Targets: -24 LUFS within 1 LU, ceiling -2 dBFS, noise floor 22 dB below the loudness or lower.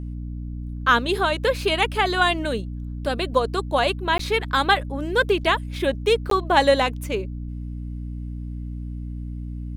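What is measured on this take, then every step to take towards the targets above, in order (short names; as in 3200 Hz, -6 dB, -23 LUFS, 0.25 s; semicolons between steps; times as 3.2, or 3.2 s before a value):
dropouts 2; longest dropout 13 ms; hum 60 Hz; harmonics up to 300 Hz; hum level -29 dBFS; loudness -22.0 LUFS; peak -3.5 dBFS; loudness target -24.0 LUFS
-> interpolate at 4.18/6.3, 13 ms; de-hum 60 Hz, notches 5; gain -2 dB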